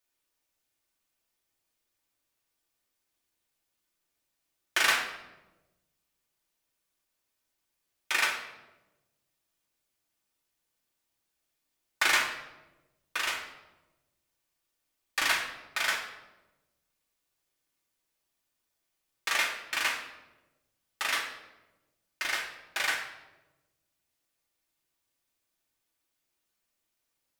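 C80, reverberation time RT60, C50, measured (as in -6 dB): 8.5 dB, 1.1 s, 6.0 dB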